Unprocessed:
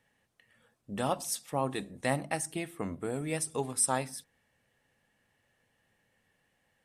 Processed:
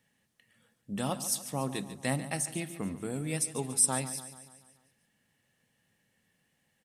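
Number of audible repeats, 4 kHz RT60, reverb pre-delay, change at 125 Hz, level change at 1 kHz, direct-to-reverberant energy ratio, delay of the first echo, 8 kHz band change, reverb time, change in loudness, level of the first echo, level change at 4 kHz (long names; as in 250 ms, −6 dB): 5, no reverb audible, no reverb audible, +2.5 dB, −4.0 dB, no reverb audible, 144 ms, +3.5 dB, no reverb audible, +1.5 dB, −13.5 dB, +2.0 dB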